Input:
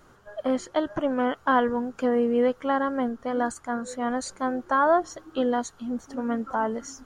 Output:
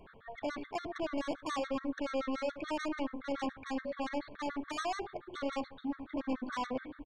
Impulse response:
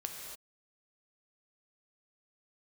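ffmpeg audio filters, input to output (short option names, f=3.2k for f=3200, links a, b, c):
-filter_complex "[0:a]aresample=11025,asoftclip=type=hard:threshold=-28dB,aresample=44100,aresample=8000,aresample=44100,aeval=exprs='0.0531*sin(PI/2*1.58*val(0)/0.0531)':c=same,asetrate=49501,aresample=44100,atempo=0.890899,asplit=2[a][b];[b]adelay=71,lowpass=f=970:p=1,volume=-9dB,asplit=2[c][d];[d]adelay=71,lowpass=f=970:p=1,volume=0.39,asplit=2[e][f];[f]adelay=71,lowpass=f=970:p=1,volume=0.39,asplit=2[g][h];[h]adelay=71,lowpass=f=970:p=1,volume=0.39[i];[c][e][g][i]amix=inputs=4:normalize=0[j];[a][j]amix=inputs=2:normalize=0,afftfilt=real='re*gt(sin(2*PI*7*pts/sr)*(1-2*mod(floor(b*sr/1024/1100),2)),0)':imag='im*gt(sin(2*PI*7*pts/sr)*(1-2*mod(floor(b*sr/1024/1100),2)),0)':win_size=1024:overlap=0.75,volume=-6dB"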